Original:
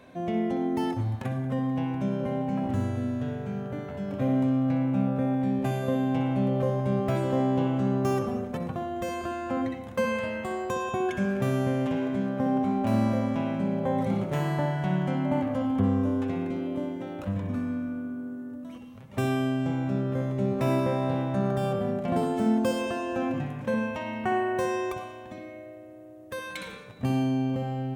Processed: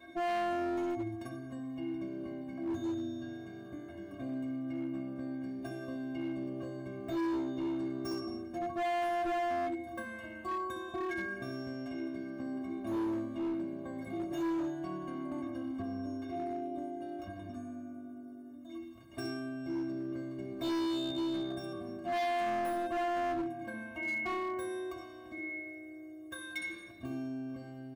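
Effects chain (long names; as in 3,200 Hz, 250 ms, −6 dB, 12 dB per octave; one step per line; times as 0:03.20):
high-pass filter 45 Hz 24 dB per octave
low-shelf EQ 300 Hz +9.5 dB
mains-hum notches 50/100/150/200 Hz
comb filter 3.3 ms, depth 42%
in parallel at +2 dB: downward compressor 4 to 1, threshold −38 dBFS, peak gain reduction 20 dB
on the sum: stiff-string resonator 330 Hz, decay 0.45 s, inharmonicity 0.03
hard clipping −38 dBFS, distortion −7 dB
level +7 dB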